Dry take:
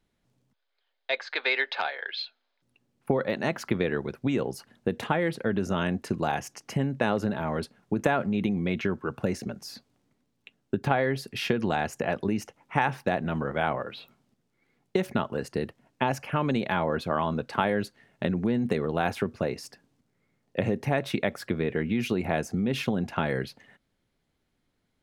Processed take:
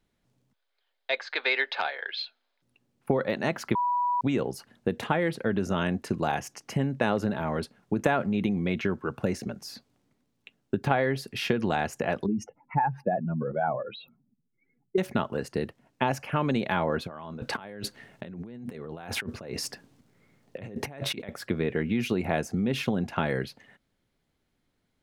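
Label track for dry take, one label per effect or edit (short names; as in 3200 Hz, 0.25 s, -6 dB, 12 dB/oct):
3.750000	4.210000	bleep 978 Hz -23 dBFS
12.260000	14.980000	spectral contrast raised exponent 2.3
17.070000	21.290000	negative-ratio compressor -38 dBFS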